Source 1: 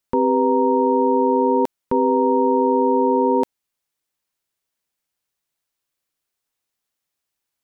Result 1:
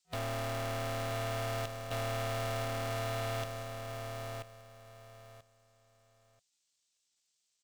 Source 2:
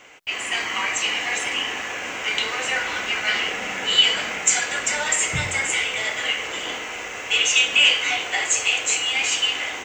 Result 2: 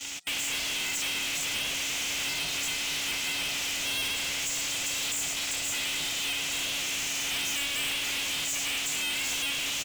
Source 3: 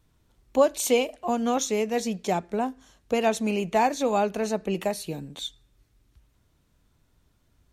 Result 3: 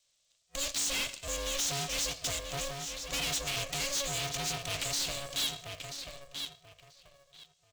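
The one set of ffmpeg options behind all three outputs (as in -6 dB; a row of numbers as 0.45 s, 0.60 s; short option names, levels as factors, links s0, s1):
-filter_complex "[0:a]acrossover=split=440|1800[s0][s1][s2];[s0]acompressor=threshold=0.0251:ratio=4[s3];[s1]acompressor=threshold=0.0708:ratio=4[s4];[s2]acompressor=threshold=0.02:ratio=4[s5];[s3][s4][s5]amix=inputs=3:normalize=0,agate=range=0.158:threshold=0.00224:ratio=16:detection=peak,acrossover=split=3000[s6][s7];[s7]acompressor=threshold=0.00794:ratio=4:attack=1:release=60[s8];[s6][s8]amix=inputs=2:normalize=0,equalizer=f=780:w=0.73:g=7.5,afftfilt=real='re*(1-between(b*sr/4096,450,2200))':imag='im*(1-between(b*sr/4096,450,2200))':win_size=4096:overlap=0.75,asoftclip=type=tanh:threshold=0.0266,asplit=2[s9][s10];[s10]adelay=985,lowpass=f=2400:p=1,volume=0.398,asplit=2[s11][s12];[s12]adelay=985,lowpass=f=2400:p=1,volume=0.22,asplit=2[s13][s14];[s14]adelay=985,lowpass=f=2400:p=1,volume=0.22[s15];[s9][s11][s13][s15]amix=inputs=4:normalize=0,aexciter=amount=14.8:drive=1.5:freq=2700,afftfilt=real='re*between(b*sr/4096,220,8400)':imag='im*between(b*sr/4096,220,8400)':win_size=4096:overlap=0.75,aeval=exprs='0.0501*(cos(1*acos(clip(val(0)/0.0501,-1,1)))-cos(1*PI/2))+0.00562*(cos(5*acos(clip(val(0)/0.0501,-1,1)))-cos(5*PI/2))+0.00282*(cos(6*acos(clip(val(0)/0.0501,-1,1)))-cos(6*PI/2))':c=same,aeval=exprs='val(0)*sgn(sin(2*PI*280*n/s))':c=same,volume=0.631"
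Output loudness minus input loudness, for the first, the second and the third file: -19.0 LU, -7.5 LU, -7.0 LU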